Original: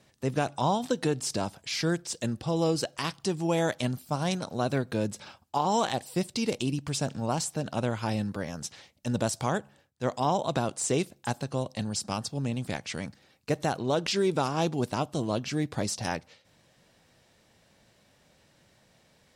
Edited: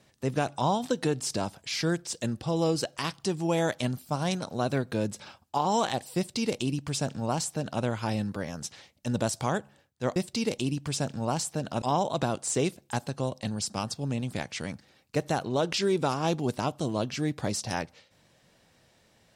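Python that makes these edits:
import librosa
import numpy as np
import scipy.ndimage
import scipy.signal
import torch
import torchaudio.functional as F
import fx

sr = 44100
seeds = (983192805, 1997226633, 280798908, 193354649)

y = fx.edit(x, sr, fx.duplicate(start_s=6.17, length_s=1.66, to_s=10.16), tone=tone)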